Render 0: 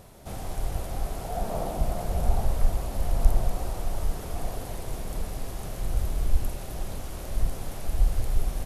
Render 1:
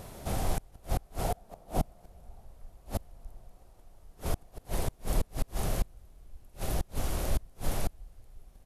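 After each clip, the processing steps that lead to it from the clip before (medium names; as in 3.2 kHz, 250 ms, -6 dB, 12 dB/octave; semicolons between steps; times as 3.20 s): inverted gate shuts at -21 dBFS, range -31 dB; trim +4.5 dB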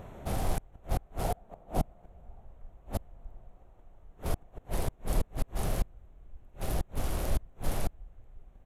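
local Wiener filter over 9 samples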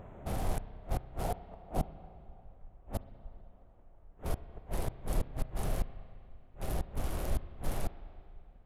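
local Wiener filter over 9 samples; spring tank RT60 2.4 s, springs 31/39 ms, chirp 35 ms, DRR 13.5 dB; trim -3 dB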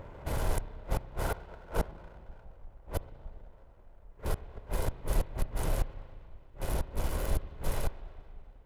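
comb filter that takes the minimum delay 2 ms; trim +4 dB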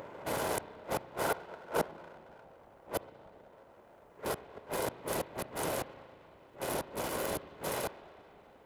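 high-pass 250 Hz 12 dB/octave; upward compressor, threshold -55 dBFS; trim +4 dB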